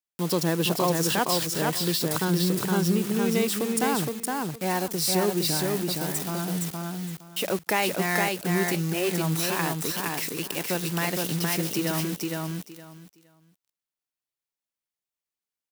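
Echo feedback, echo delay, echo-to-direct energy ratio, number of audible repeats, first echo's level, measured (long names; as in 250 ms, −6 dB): 19%, 465 ms, −3.0 dB, 3, −3.0 dB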